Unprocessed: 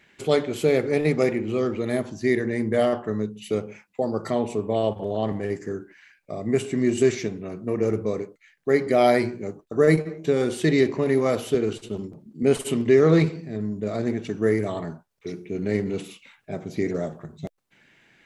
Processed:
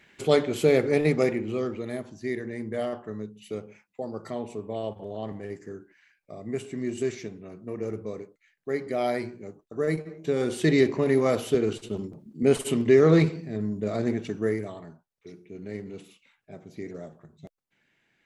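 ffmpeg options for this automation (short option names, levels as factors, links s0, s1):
-af "volume=2.51,afade=t=out:st=0.89:d=1.1:silence=0.354813,afade=t=in:st=10.02:d=0.67:silence=0.398107,afade=t=out:st=14.15:d=0.63:silence=0.281838"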